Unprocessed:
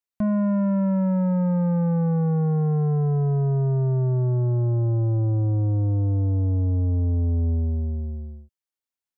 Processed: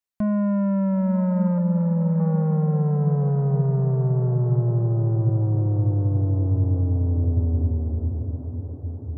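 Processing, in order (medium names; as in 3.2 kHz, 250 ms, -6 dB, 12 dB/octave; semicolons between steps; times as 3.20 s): 1.58–2.20 s: resonances exaggerated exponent 1.5; echo that smears into a reverb 908 ms, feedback 59%, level -9 dB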